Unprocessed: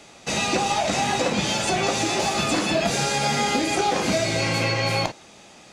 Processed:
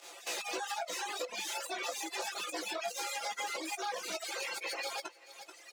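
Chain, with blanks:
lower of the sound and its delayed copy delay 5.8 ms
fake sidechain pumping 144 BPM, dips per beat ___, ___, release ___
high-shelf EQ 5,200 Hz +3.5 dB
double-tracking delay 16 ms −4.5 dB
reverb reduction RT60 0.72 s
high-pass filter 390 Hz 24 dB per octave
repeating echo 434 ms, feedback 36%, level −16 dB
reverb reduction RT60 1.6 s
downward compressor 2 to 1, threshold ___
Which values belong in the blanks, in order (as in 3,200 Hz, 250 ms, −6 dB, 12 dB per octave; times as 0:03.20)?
1, −14 dB, 80 ms, −45 dBFS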